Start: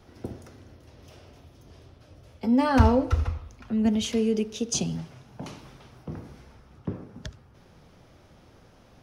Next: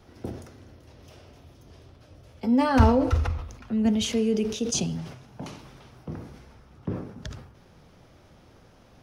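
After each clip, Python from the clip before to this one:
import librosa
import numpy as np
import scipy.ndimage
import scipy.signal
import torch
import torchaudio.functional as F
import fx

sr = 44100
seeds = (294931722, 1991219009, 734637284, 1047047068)

y = fx.sustainer(x, sr, db_per_s=76.0)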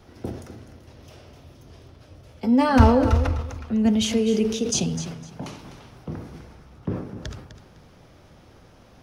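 y = fx.echo_feedback(x, sr, ms=253, feedback_pct=21, wet_db=-12.0)
y = F.gain(torch.from_numpy(y), 3.0).numpy()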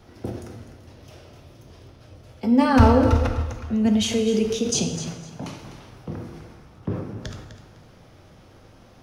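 y = fx.rev_plate(x, sr, seeds[0], rt60_s=1.1, hf_ratio=0.9, predelay_ms=0, drr_db=6.5)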